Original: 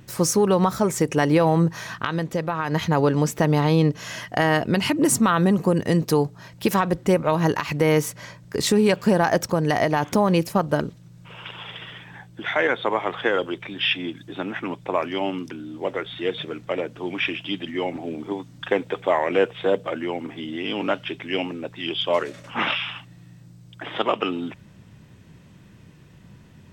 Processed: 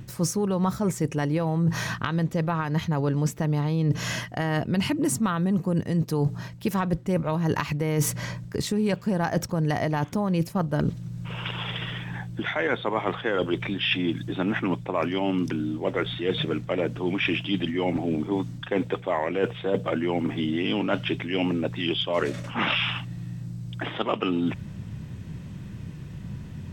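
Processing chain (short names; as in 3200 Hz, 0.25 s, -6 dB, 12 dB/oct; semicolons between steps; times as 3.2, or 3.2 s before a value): tone controls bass +9 dB, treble 0 dB; reverse; compressor 12:1, threshold -25 dBFS, peak gain reduction 17 dB; reverse; gain +4 dB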